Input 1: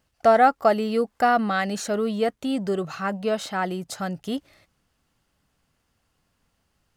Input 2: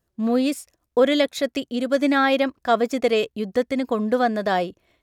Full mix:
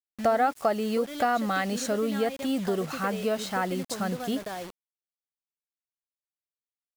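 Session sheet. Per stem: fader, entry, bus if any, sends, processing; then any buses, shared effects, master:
-0.5 dB, 0.00 s, no send, dry
-8.5 dB, 0.00 s, no send, compressor 10:1, threshold -24 dBFS, peak gain reduction 12.5 dB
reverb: off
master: bit-crush 7-bit; compressor 2:1, threshold -25 dBFS, peak gain reduction 7.5 dB

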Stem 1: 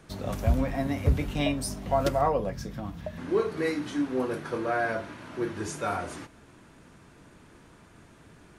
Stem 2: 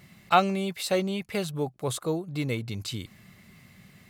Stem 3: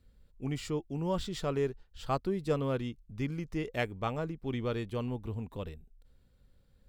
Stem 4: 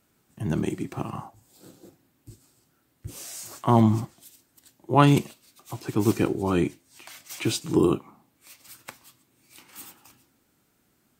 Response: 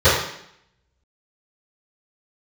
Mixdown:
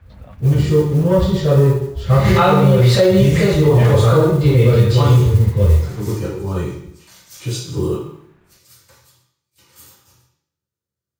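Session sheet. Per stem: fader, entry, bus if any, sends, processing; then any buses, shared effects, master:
-4.0 dB, 0.00 s, no send, Chebyshev low-pass 2400 Hz, order 2; bell 380 Hz -13 dB 0.69 oct; negative-ratio compressor -31 dBFS; auto duck -12 dB, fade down 0.70 s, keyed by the third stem
-8.0 dB, 2.05 s, send -4 dB, backwards sustainer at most 90 dB/s
-6.0 dB, 0.00 s, send -12.5 dB, low shelf 240 Hz +9 dB; sample leveller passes 2
-15.5 dB, 0.00 s, send -11.5 dB, gate with hold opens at -48 dBFS; tone controls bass +3 dB, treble +13 dB; attack slew limiter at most 350 dB/s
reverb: on, RT60 0.70 s, pre-delay 3 ms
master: modulation noise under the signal 31 dB; limiter -3.5 dBFS, peak gain reduction 7.5 dB

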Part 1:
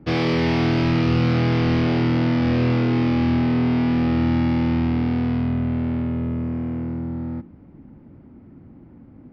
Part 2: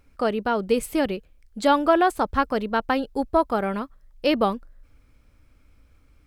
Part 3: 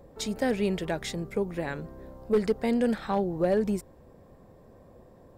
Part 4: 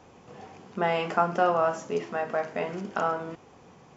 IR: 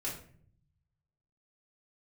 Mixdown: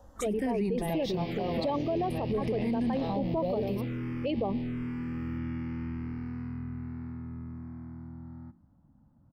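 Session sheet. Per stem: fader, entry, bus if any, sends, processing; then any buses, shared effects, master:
-14.0 dB, 1.10 s, no send, dry
+0.5 dB, 0.00 s, no send, formant sharpening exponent 2; tremolo saw up 0.56 Hz, depth 50%
+3.0 dB, 0.00 s, no send, endless phaser -0.48 Hz
-6.0 dB, 0.00 s, no send, dry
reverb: off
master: envelope phaser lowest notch 380 Hz, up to 1400 Hz, full sweep at -22.5 dBFS; limiter -22.5 dBFS, peak gain reduction 10.5 dB

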